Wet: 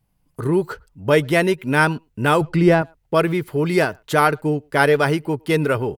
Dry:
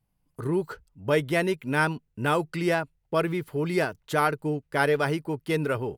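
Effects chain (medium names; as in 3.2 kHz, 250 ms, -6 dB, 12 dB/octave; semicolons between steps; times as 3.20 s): 2.41–2.82 s: tilt EQ -2.5 dB/octave; speakerphone echo 110 ms, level -30 dB; trim +7.5 dB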